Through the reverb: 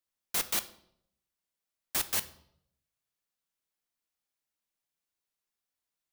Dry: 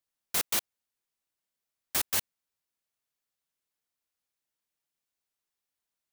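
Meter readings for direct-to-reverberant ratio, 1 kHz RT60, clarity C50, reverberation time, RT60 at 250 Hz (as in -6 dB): 11.0 dB, 0.65 s, 16.0 dB, 0.70 s, 0.80 s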